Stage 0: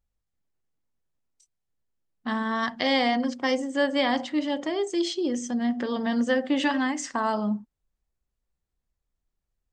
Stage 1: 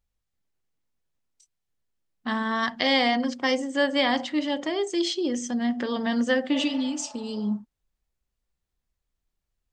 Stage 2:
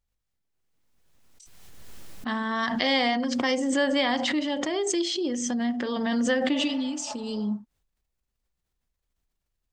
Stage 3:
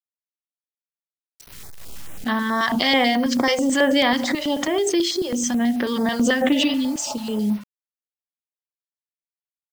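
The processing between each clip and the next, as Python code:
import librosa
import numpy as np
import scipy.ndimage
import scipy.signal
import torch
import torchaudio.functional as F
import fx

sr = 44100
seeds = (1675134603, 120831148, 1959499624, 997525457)

y1 = fx.spec_repair(x, sr, seeds[0], start_s=6.55, length_s=0.94, low_hz=550.0, high_hz=2300.0, source='both')
y1 = fx.peak_eq(y1, sr, hz=3400.0, db=3.5, octaves=2.3)
y2 = fx.pre_swell(y1, sr, db_per_s=27.0)
y2 = y2 * librosa.db_to_amplitude(-2.0)
y3 = fx.quant_dither(y2, sr, seeds[1], bits=8, dither='none')
y3 = fx.filter_held_notch(y3, sr, hz=9.2, low_hz=270.0, high_hz=7400.0)
y3 = y3 * librosa.db_to_amplitude(7.0)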